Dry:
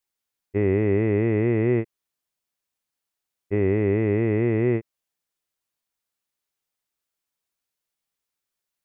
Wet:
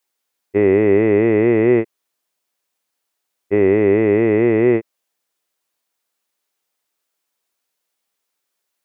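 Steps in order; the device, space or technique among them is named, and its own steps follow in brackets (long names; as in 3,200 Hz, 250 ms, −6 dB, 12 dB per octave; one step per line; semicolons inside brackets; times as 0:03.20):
filter by subtraction (in parallel: low-pass filter 460 Hz 12 dB per octave + polarity inversion)
on the sum: level +8 dB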